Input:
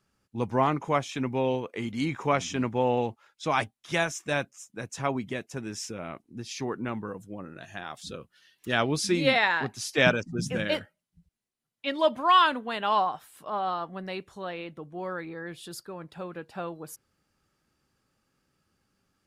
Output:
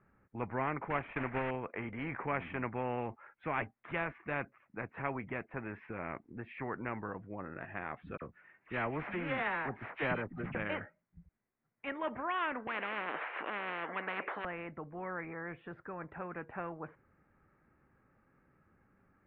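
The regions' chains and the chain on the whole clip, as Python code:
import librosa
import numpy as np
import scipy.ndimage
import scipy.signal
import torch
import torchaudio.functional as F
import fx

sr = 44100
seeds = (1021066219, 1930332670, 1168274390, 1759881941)

y = fx.chain(x, sr, fx.block_float(bits=3),
    fx.lowpass(hz=5200.0, slope=12),
    fx.transient(attack_db=7, sustain_db=-2), at=(0.9, 1.51))
y = fx.chain(y, sr, fx.sample_sort(block=8),
    fx.dispersion(late='lows', ms=47.0, hz=2100.0), at=(8.17, 10.55))
y = fx.chain(y, sr, fx.highpass(hz=490.0, slope=24),
    fx.spectral_comp(ratio=10.0), at=(12.67, 14.45))
y = scipy.signal.sosfilt(scipy.signal.butter(8, 2200.0, 'lowpass', fs=sr, output='sos'), y)
y = fx.spectral_comp(y, sr, ratio=2.0)
y = y * 10.0 ** (-8.5 / 20.0)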